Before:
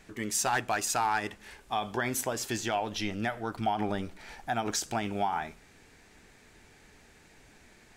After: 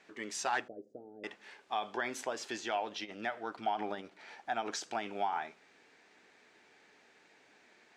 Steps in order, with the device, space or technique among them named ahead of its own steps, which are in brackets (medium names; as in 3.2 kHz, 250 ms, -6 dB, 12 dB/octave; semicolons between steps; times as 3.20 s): public-address speaker with an overloaded transformer (transformer saturation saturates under 190 Hz; band-pass 340–5000 Hz); 0.68–1.24 s: elliptic low-pass 520 Hz, stop band 50 dB; trim -3.5 dB